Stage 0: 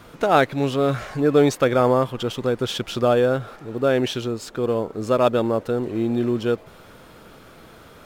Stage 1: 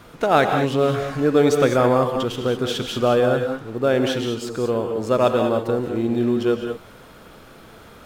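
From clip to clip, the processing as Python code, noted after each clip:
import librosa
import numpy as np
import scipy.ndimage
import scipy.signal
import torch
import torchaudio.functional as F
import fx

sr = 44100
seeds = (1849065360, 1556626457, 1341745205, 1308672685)

y = fx.rev_gated(x, sr, seeds[0], gate_ms=230, shape='rising', drr_db=4.5)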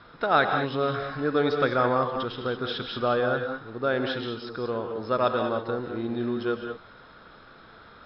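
y = scipy.signal.sosfilt(scipy.signal.cheby1(6, 9, 5300.0, 'lowpass', fs=sr, output='sos'), x)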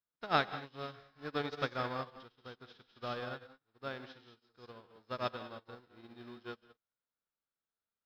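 y = fx.envelope_flatten(x, sr, power=0.6)
y = fx.upward_expand(y, sr, threshold_db=-46.0, expansion=2.5)
y = F.gain(torch.from_numpy(y), -7.0).numpy()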